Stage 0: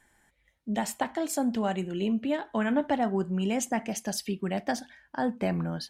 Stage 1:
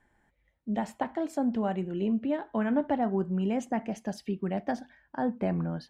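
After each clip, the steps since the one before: LPF 1100 Hz 6 dB/oct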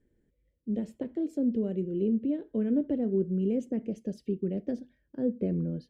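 EQ curve 200 Hz 0 dB, 490 Hz +4 dB, 800 Hz -27 dB, 2900 Hz -11 dB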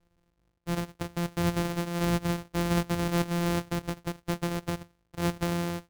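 sample sorter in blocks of 256 samples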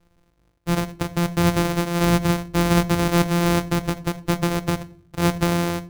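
shoebox room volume 610 m³, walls furnished, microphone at 0.45 m; gain +9 dB

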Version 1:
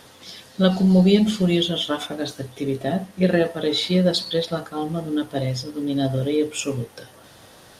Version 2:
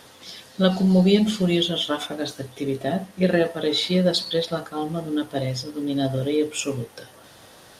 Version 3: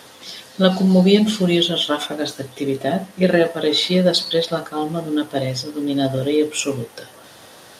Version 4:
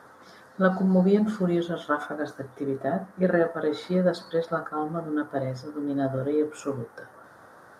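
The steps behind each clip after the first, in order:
low shelf 220 Hz -3.5 dB
HPF 140 Hz 6 dB/oct; gain +5 dB
resonant high shelf 2000 Hz -12 dB, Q 3; gain -7.5 dB

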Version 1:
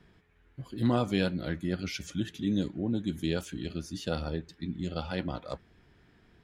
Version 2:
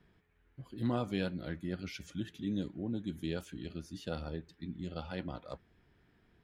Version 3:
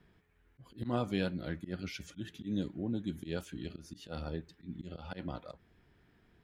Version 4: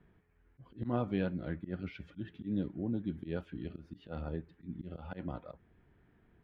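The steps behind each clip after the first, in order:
bell 6600 Hz -4 dB 1.4 oct; gain -6.5 dB
auto swell 0.107 s; gain +1.5 dB
air absorption 470 m; gain +1 dB

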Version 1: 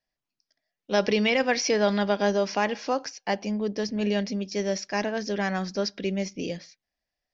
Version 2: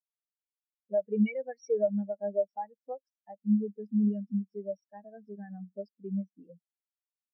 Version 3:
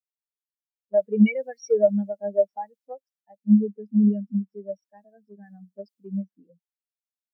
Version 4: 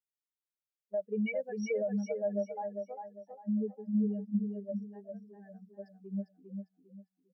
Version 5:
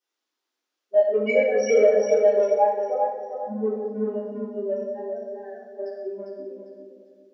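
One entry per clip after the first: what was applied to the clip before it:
dynamic EQ 340 Hz, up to -4 dB, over -33 dBFS, Q 0.72; compressor 2:1, threshold -31 dBFS, peak gain reduction 6.5 dB; spectral expander 4:1
three-band expander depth 70%; gain +5.5 dB
limiter -18.5 dBFS, peak gain reduction 11.5 dB; feedback echo 0.4 s, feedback 31%, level -5 dB; gain -7.5 dB
in parallel at -10.5 dB: soft clip -34 dBFS, distortion -9 dB; on the sum: brick-wall FIR high-pass 240 Hz; reverb RT60 1.1 s, pre-delay 3 ms, DRR -12 dB

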